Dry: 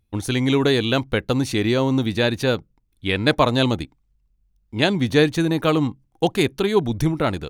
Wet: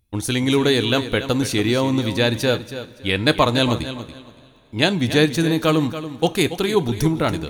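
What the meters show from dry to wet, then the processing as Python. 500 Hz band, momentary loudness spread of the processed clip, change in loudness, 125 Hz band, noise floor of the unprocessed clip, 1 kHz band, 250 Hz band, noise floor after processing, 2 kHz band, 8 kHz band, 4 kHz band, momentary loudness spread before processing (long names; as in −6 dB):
+0.5 dB, 8 LU, +1.0 dB, +0.5 dB, −66 dBFS, +1.0 dB, +0.5 dB, −49 dBFS, +1.5 dB, +5.5 dB, +3.0 dB, 7 LU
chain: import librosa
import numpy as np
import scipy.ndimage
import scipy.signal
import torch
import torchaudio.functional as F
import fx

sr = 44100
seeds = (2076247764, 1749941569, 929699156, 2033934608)

p1 = fx.high_shelf(x, sr, hz=4600.0, db=7.0)
p2 = p1 + fx.echo_feedback(p1, sr, ms=283, feedback_pct=23, wet_db=-12.0, dry=0)
y = fx.rev_double_slope(p2, sr, seeds[0], early_s=0.28, late_s=3.3, knee_db=-18, drr_db=13.0)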